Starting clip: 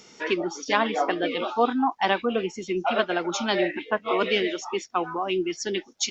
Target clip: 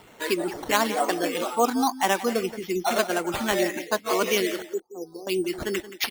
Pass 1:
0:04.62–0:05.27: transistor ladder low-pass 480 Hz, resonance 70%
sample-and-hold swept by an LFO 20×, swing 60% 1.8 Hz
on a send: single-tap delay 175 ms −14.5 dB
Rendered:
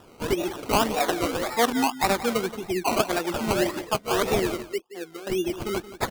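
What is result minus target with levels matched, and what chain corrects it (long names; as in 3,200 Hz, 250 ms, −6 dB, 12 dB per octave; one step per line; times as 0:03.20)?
sample-and-hold swept by an LFO: distortion +9 dB
0:04.62–0:05.27: transistor ladder low-pass 480 Hz, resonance 70%
sample-and-hold swept by an LFO 7×, swing 60% 1.8 Hz
on a send: single-tap delay 175 ms −14.5 dB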